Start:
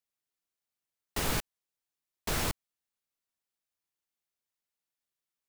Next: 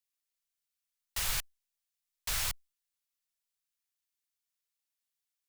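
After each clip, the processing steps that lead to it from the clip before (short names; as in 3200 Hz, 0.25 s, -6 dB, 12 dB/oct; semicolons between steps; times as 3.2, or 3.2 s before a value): passive tone stack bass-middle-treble 10-0-10; gain +2.5 dB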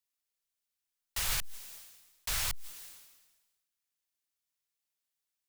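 sustainer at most 47 dB/s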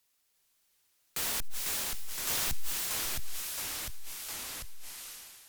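sine folder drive 18 dB, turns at -19 dBFS; echoes that change speed 0.357 s, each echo -2 st, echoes 3; gain -8.5 dB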